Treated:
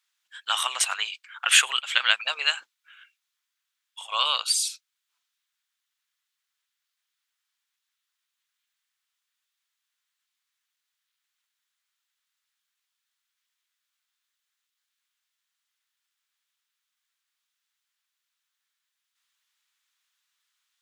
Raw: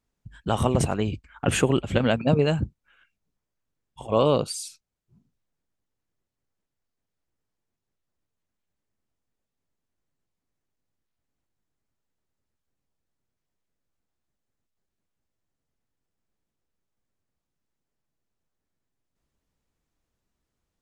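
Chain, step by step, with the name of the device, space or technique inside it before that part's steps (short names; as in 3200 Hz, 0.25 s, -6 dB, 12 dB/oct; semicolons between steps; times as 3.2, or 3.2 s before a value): headphones lying on a table (HPF 1300 Hz 24 dB/oct; bell 3500 Hz +6 dB 0.59 oct); gain +8.5 dB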